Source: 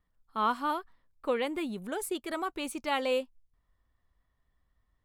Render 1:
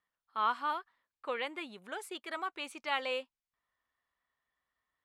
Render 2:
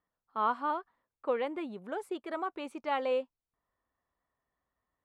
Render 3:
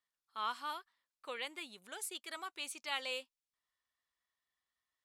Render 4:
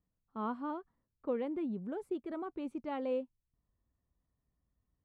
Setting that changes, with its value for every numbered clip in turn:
resonant band-pass, frequency: 2,000, 730, 5,200, 180 Hertz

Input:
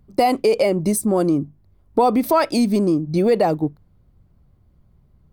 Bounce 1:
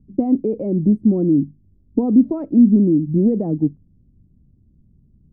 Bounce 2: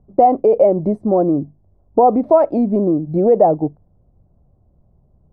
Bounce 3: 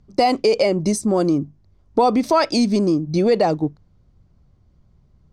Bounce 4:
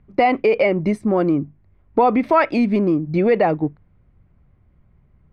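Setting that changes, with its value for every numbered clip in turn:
low-pass with resonance, frequency: 260, 690, 6,000, 2,200 Hertz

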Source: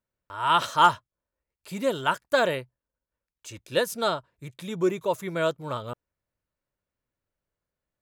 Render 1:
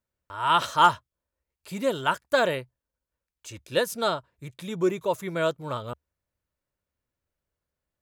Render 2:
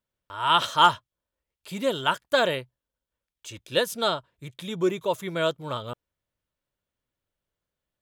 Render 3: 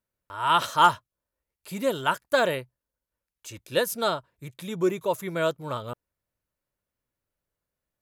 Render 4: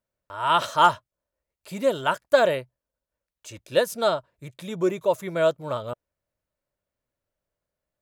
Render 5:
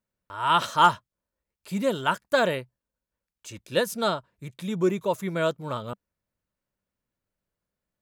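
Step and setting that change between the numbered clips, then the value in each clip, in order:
parametric band, centre frequency: 72, 3,300, 12,000, 610, 200 Hertz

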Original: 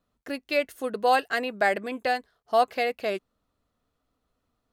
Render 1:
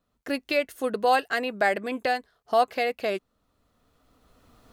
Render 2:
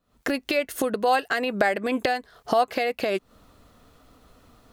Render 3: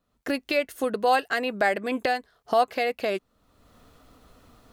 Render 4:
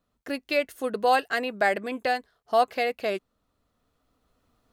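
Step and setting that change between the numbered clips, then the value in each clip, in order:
camcorder AGC, rising by: 13, 89, 32, 5.1 dB per second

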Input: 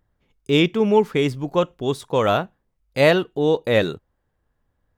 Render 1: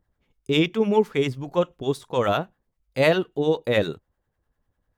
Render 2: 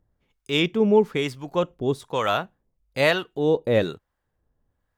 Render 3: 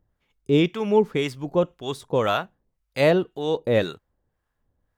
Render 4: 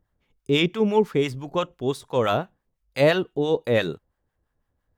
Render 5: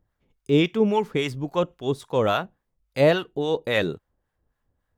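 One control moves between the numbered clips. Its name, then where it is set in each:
two-band tremolo in antiphase, speed: 10, 1.1, 1.9, 5.9, 3.6 Hertz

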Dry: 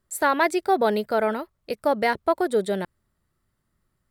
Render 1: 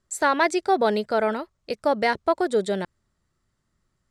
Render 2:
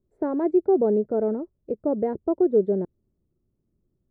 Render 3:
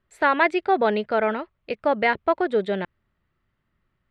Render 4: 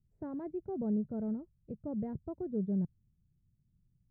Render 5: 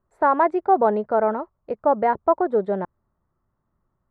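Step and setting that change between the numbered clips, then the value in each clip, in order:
low-pass with resonance, frequency: 6,900, 380, 2,700, 150, 1,000 Hertz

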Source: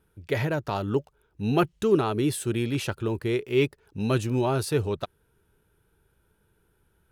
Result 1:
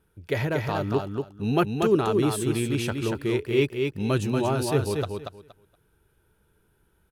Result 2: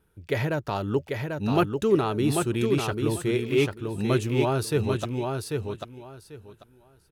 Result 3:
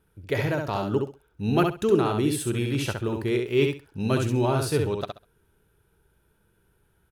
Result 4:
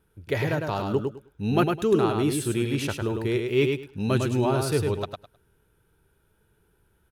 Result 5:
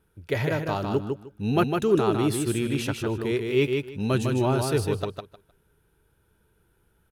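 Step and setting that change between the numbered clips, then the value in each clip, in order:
repeating echo, delay time: 235, 792, 66, 104, 154 milliseconds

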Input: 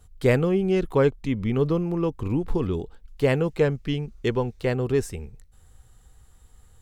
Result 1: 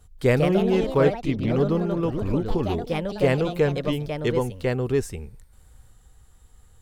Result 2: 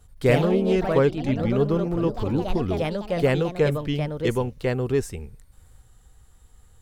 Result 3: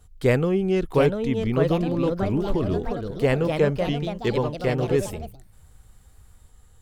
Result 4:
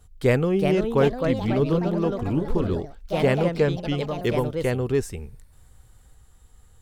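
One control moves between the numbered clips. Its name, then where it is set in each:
delay with pitch and tempo change per echo, delay time: 187, 82, 763, 414 milliseconds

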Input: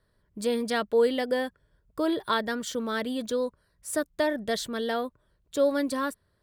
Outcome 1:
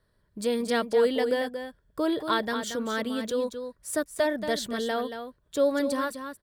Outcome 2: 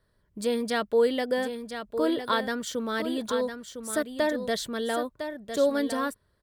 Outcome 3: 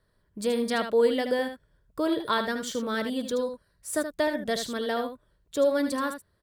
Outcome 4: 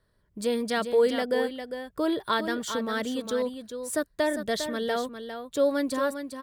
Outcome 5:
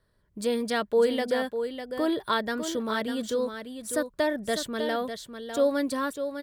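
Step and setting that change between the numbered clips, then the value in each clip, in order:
single-tap delay, delay time: 229, 1,006, 77, 403, 601 milliseconds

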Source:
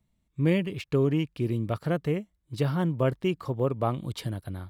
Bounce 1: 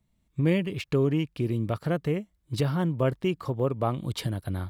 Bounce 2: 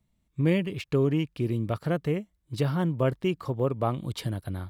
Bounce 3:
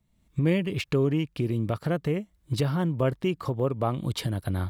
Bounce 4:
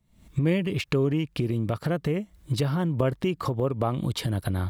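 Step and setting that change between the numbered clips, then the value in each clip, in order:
camcorder AGC, rising by: 14, 5, 37, 90 dB per second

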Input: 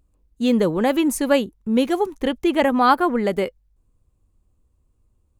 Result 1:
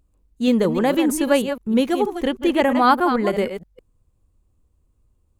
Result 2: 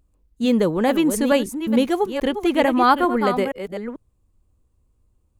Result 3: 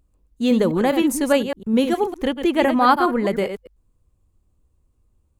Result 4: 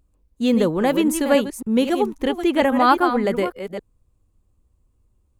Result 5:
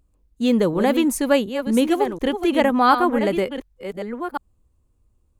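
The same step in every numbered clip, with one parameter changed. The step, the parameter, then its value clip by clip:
delay that plays each chunk backwards, delay time: 158, 440, 102, 271, 729 milliseconds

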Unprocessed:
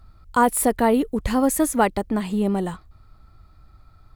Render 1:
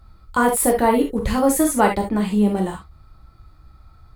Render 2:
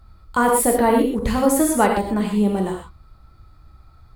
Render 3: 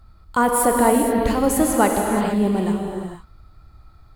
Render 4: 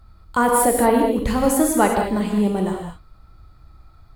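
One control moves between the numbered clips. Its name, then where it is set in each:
reverb whose tail is shaped and stops, gate: 90, 150, 500, 240 milliseconds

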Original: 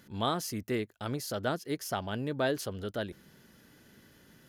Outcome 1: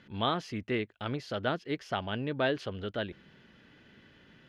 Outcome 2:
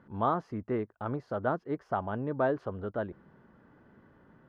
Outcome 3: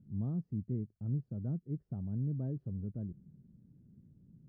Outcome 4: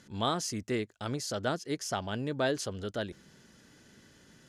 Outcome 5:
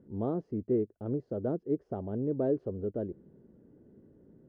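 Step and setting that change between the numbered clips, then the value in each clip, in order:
low-pass with resonance, frequency: 2,900, 1,100, 160, 7,400, 420 Hertz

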